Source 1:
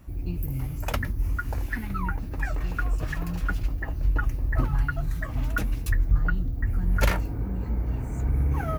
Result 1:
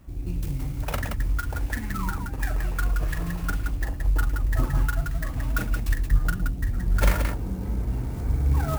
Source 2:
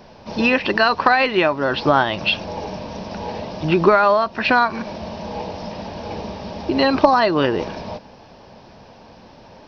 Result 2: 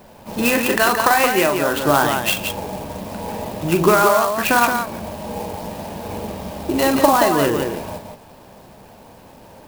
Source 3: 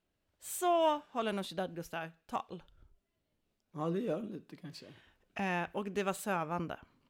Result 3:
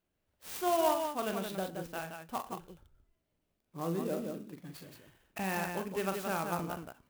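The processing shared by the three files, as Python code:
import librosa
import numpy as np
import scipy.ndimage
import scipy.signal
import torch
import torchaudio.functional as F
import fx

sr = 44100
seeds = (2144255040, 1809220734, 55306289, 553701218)

y = fx.echo_multitap(x, sr, ms=(42, 111, 174), db=(-7.5, -20.0, -5.5))
y = fx.clock_jitter(y, sr, seeds[0], jitter_ms=0.041)
y = y * librosa.db_to_amplitude(-1.0)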